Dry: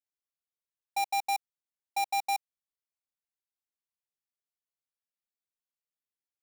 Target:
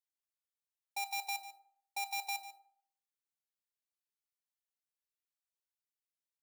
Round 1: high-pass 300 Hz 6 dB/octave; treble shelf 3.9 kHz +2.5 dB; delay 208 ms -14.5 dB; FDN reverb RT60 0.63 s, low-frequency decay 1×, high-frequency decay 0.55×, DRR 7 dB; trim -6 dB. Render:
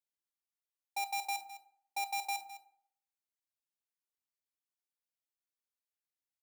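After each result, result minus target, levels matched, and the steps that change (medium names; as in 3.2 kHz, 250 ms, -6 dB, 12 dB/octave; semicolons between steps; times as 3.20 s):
echo 63 ms late; 250 Hz band +6.5 dB
change: delay 145 ms -14.5 dB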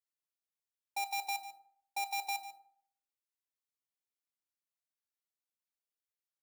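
250 Hz band +6.0 dB
change: high-pass 970 Hz 6 dB/octave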